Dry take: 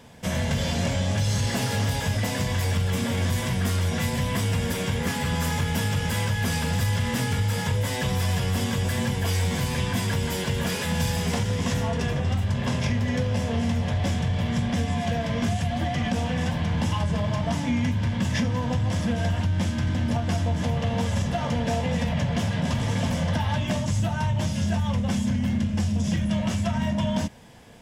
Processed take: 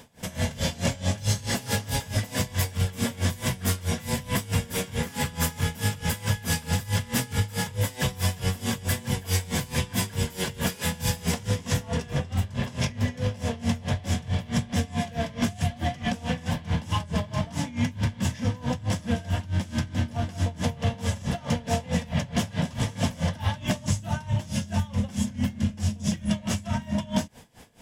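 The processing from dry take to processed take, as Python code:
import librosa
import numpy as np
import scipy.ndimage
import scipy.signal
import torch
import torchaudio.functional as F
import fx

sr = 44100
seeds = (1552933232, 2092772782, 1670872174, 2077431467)

y = fx.high_shelf(x, sr, hz=6600.0, db=8.0)
y = y * 10.0 ** (-21 * (0.5 - 0.5 * np.cos(2.0 * np.pi * 4.6 * np.arange(len(y)) / sr)) / 20.0)
y = F.gain(torch.from_numpy(y), 2.5).numpy()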